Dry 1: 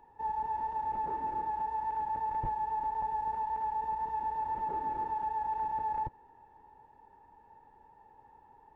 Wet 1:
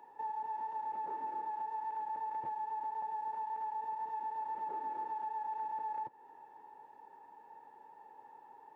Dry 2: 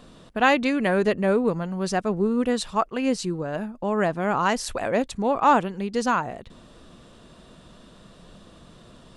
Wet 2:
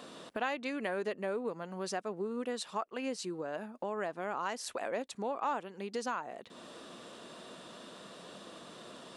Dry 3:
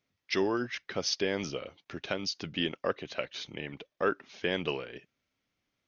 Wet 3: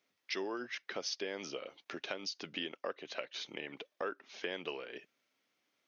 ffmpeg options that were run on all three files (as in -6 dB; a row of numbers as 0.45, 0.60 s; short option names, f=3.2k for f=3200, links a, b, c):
-af "highpass=310,acompressor=threshold=-44dB:ratio=2.5,volume=3dB"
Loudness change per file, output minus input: -5.0, -14.0, -8.0 LU